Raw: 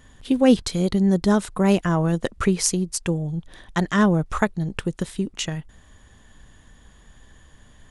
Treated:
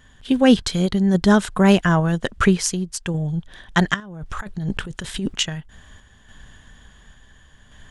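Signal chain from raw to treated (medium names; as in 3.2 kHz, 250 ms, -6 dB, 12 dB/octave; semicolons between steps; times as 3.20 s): graphic EQ with 31 bands 315 Hz -5 dB, 500 Hz -3 dB, 1.6 kHz +6 dB, 3.15 kHz +5 dB, 10 kHz -5 dB; 3.94–5.35 s: compressor with a negative ratio -30 dBFS, ratio -1; random-step tremolo; trim +5 dB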